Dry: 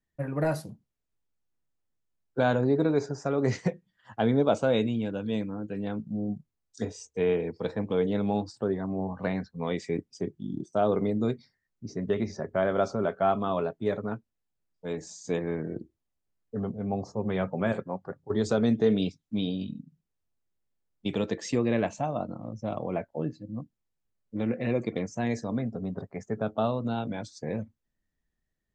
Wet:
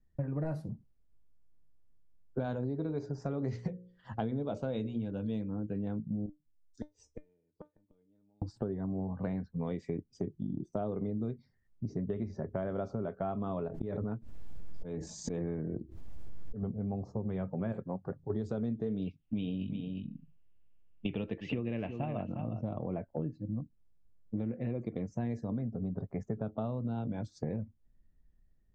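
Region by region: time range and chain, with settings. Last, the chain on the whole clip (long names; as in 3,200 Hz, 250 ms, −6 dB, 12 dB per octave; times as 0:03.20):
0:02.44–0:05.50: parametric band 4,500 Hz +7.5 dB 1.1 octaves + mains-hum notches 60/120/180/240/300/360/420/480/540/600 Hz
0:06.26–0:08.42: gate with flip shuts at −24 dBFS, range −40 dB + tuned comb filter 300 Hz, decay 0.16 s, mix 80%
0:13.68–0:16.63: volume swells 204 ms + background raised ahead of every attack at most 29 dB per second
0:19.07–0:22.63: low-pass with resonance 2,800 Hz, resonance Q 6.8 + single-tap delay 357 ms −12.5 dB
whole clip: spectral tilt −3.5 dB per octave; downward compressor 6 to 1, threshold −33 dBFS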